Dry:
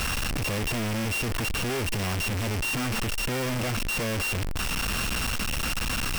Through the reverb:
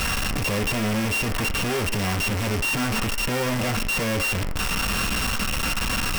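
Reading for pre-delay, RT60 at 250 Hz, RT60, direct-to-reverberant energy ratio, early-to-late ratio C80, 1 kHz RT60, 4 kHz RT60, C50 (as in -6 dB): 3 ms, 0.35 s, 0.45 s, 4.5 dB, 17.0 dB, 0.50 s, 0.60 s, 13.0 dB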